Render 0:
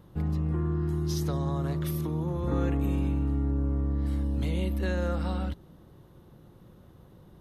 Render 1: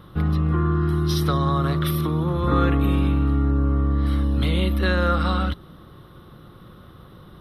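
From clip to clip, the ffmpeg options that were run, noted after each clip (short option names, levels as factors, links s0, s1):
-af "superequalizer=10b=3.16:11b=1.78:12b=1.58:13b=2.51:15b=0.251,volume=2.37"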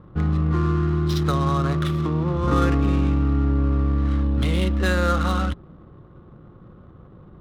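-af "adynamicsmooth=sensitivity=5.5:basefreq=810"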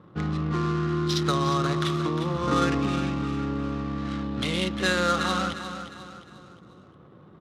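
-filter_complex "[0:a]crystalizer=i=3.5:c=0,highpass=150,lowpass=5800,asplit=2[s0][s1];[s1]aecho=0:1:355|710|1065|1420:0.316|0.13|0.0532|0.0218[s2];[s0][s2]amix=inputs=2:normalize=0,volume=0.75"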